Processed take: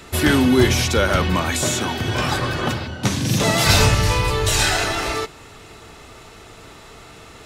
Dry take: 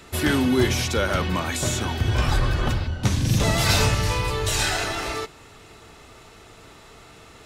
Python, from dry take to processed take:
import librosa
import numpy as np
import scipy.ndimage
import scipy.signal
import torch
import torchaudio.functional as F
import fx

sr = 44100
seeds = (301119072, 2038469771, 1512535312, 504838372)

y = fx.highpass(x, sr, hz=150.0, slope=12, at=(1.62, 3.67))
y = y * librosa.db_to_amplitude(5.0)